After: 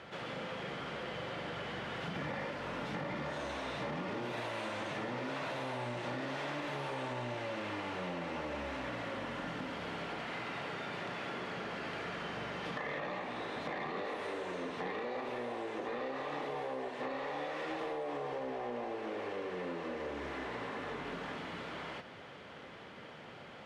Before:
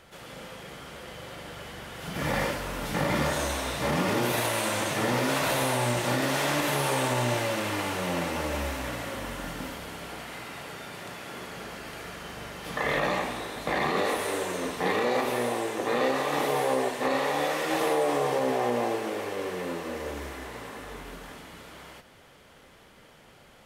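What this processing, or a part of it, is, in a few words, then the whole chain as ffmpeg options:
AM radio: -af "highpass=110,lowpass=3.5k,acompressor=threshold=-41dB:ratio=6,asoftclip=type=tanh:threshold=-34dB,volume=4.5dB"

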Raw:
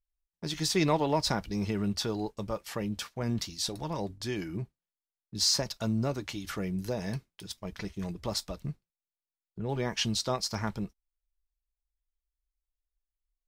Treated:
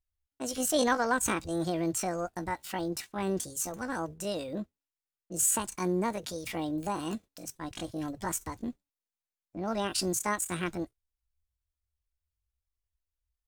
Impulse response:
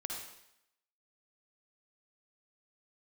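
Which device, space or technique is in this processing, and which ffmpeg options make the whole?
chipmunk voice: -af "asetrate=72056,aresample=44100,atempo=0.612027"

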